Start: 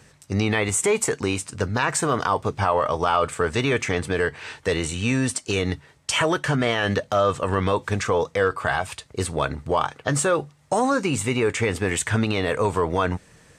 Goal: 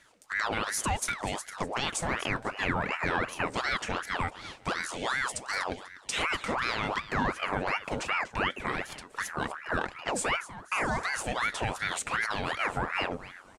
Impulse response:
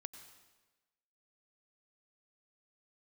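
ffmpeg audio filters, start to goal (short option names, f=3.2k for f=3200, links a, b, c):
-af "aecho=1:1:246|492|738:0.178|0.0516|0.015,aeval=exprs='val(0)*sin(2*PI*1100*n/s+1100*0.7/2.7*sin(2*PI*2.7*n/s))':c=same,volume=-6dB"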